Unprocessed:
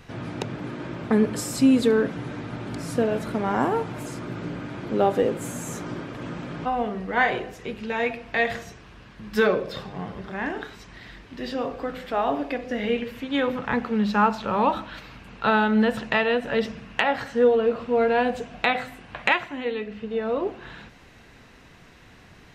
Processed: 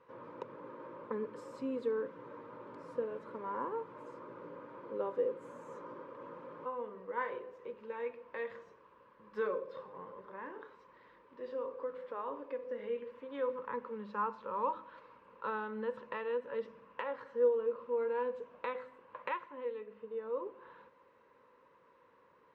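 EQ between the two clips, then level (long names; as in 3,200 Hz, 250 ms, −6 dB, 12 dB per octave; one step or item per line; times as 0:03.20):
dynamic equaliser 700 Hz, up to −7 dB, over −35 dBFS, Q 1
pair of resonant band-passes 720 Hz, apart 0.93 octaves
−2.5 dB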